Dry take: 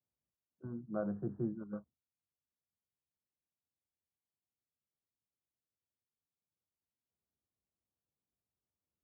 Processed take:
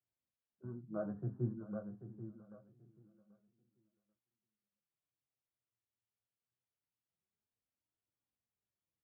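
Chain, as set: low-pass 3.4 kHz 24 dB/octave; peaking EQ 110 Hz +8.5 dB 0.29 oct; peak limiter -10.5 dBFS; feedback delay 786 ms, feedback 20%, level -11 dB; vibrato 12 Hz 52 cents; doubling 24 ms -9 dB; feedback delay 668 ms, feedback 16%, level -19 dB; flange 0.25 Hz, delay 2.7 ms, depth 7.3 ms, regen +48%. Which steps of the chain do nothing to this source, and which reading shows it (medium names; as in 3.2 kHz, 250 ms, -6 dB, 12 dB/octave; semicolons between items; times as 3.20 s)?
low-pass 3.4 kHz: input has nothing above 760 Hz; peak limiter -10.5 dBFS: peak at its input -24.0 dBFS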